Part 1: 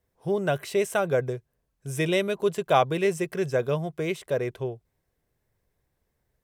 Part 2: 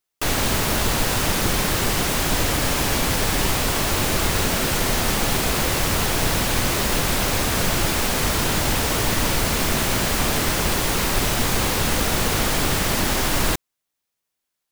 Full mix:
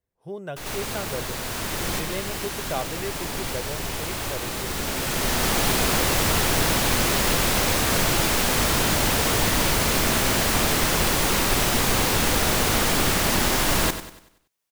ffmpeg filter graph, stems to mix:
ffmpeg -i stem1.wav -i stem2.wav -filter_complex "[0:a]volume=-9dB,asplit=2[link_01][link_02];[1:a]lowshelf=frequency=150:gain=-3,adelay=350,volume=0dB,asplit=2[link_03][link_04];[link_04]volume=-11dB[link_05];[link_02]apad=whole_len=664438[link_06];[link_03][link_06]sidechaincompress=threshold=-42dB:ratio=16:attack=8.5:release=1160[link_07];[link_05]aecho=0:1:95|190|285|380|475|570:1|0.42|0.176|0.0741|0.0311|0.0131[link_08];[link_01][link_07][link_08]amix=inputs=3:normalize=0" out.wav

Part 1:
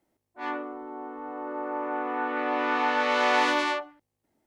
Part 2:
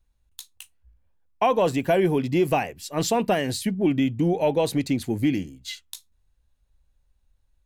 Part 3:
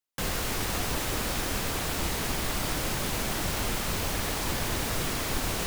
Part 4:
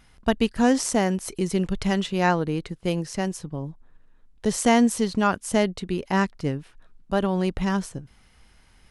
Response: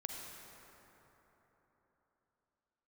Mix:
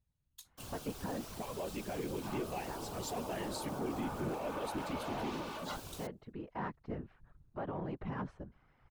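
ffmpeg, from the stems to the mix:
-filter_complex "[0:a]adelay=1850,volume=-1.5dB[link_01];[1:a]alimiter=limit=-17dB:level=0:latency=1:release=183,volume=-7dB,asplit=2[link_02][link_03];[2:a]adelay=400,volume=-11.5dB[link_04];[3:a]lowpass=1100,tiltshelf=frequency=670:gain=-6,adelay=450,volume=-0.5dB[link_05];[link_03]apad=whole_len=412386[link_06];[link_05][link_06]sidechaincompress=threshold=-47dB:ratio=8:attack=30:release=1320[link_07];[link_02][link_07]amix=inputs=2:normalize=0,alimiter=limit=-23.5dB:level=0:latency=1:release=275,volume=0dB[link_08];[link_01][link_04]amix=inputs=2:normalize=0,equalizer=frequency=1900:width=3.4:gain=-14,acompressor=threshold=-32dB:ratio=6,volume=0dB[link_09];[link_08][link_09]amix=inputs=2:normalize=0,afftfilt=real='hypot(re,im)*cos(2*PI*random(0))':imag='hypot(re,im)*sin(2*PI*random(1))':win_size=512:overlap=0.75,asoftclip=type=tanh:threshold=-29dB"

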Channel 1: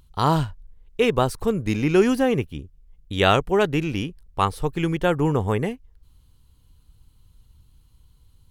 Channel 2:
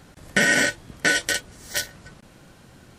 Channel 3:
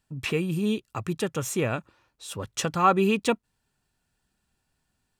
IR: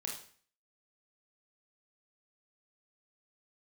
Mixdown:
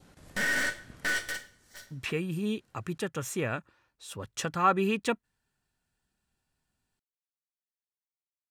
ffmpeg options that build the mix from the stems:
-filter_complex "[1:a]aeval=exprs='(tanh(15.8*val(0)+0.6)-tanh(0.6))/15.8':channel_layout=same,volume=-8.5dB,afade=type=out:start_time=1.19:duration=0.3:silence=0.237137,asplit=2[link_01][link_02];[link_02]volume=-5dB[link_03];[2:a]adelay=1800,volume=-5.5dB[link_04];[3:a]atrim=start_sample=2205[link_05];[link_03][link_05]afir=irnorm=-1:irlink=0[link_06];[link_01][link_04][link_06]amix=inputs=3:normalize=0,adynamicequalizer=threshold=0.00355:dfrequency=1700:dqfactor=2.4:tfrequency=1700:tqfactor=2.4:attack=5:release=100:ratio=0.375:range=3.5:mode=boostabove:tftype=bell"

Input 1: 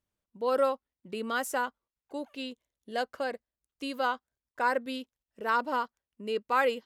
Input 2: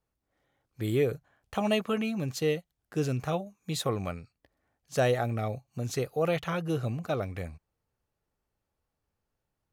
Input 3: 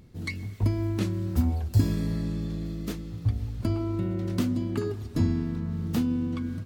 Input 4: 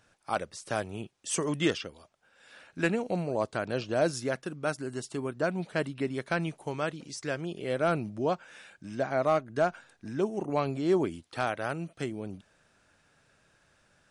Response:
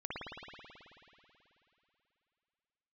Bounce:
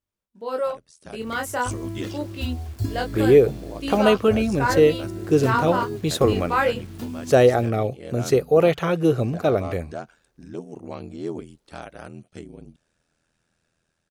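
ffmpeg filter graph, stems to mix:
-filter_complex "[0:a]flanger=delay=20:depth=6.6:speed=0.43,volume=1.5dB[link_01];[1:a]equalizer=frequency=390:width=1.2:gain=8.5,adelay=2350,volume=-0.5dB[link_02];[2:a]aecho=1:1:2.9:0.61,dynaudnorm=framelen=280:gausssize=9:maxgain=4dB,acrusher=bits=6:mix=0:aa=0.000001,adelay=1050,volume=-14.5dB[link_03];[3:a]equalizer=frequency=1300:width_type=o:width=2.9:gain=-6.5,aeval=exprs='val(0)*sin(2*PI*41*n/s)':channel_layout=same,adelay=350,volume=-7dB[link_04];[link_01][link_02][link_03][link_04]amix=inputs=4:normalize=0,dynaudnorm=framelen=850:gausssize=3:maxgain=7dB"

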